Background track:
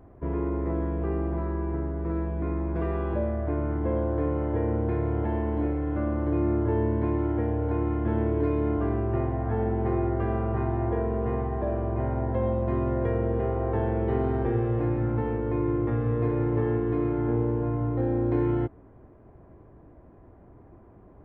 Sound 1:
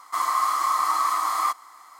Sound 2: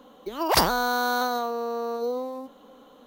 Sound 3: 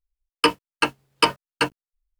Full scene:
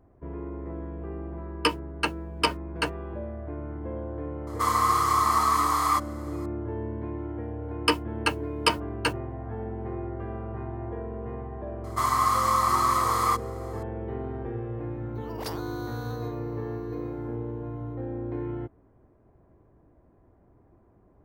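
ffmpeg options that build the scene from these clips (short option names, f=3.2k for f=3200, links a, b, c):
-filter_complex "[3:a]asplit=2[a][b];[1:a]asplit=2[c][d];[0:a]volume=-8dB[e];[b]highshelf=f=7.8k:g=4[f];[a]atrim=end=2.19,asetpts=PTS-STARTPTS,volume=-6dB,afade=t=in:d=0.004:c=hsin,afade=t=out:st=2.186:d=0.004:c=hsin,adelay=1210[g];[c]atrim=end=1.99,asetpts=PTS-STARTPTS,afade=t=in:d=0.004:c=hsin,afade=t=out:st=1.986:d=0.004:c=hsin,adelay=4470[h];[f]atrim=end=2.19,asetpts=PTS-STARTPTS,volume=-5dB,afade=t=in:d=0.004:c=hsin,afade=t=out:st=2.186:d=0.004:c=hsin,adelay=7440[i];[d]atrim=end=1.99,asetpts=PTS-STARTPTS,volume=-0.5dB,afade=t=in:d=0.004:c=hsin,afade=t=out:st=1.986:d=0.004:c=hsin,adelay=11840[j];[2:a]atrim=end=3.06,asetpts=PTS-STARTPTS,volume=-17dB,afade=t=in:d=0.004:c=hsin,afade=t=out:st=3.056:d=0.004:c=hsin,adelay=14890[k];[e][g][h][i][j][k]amix=inputs=6:normalize=0"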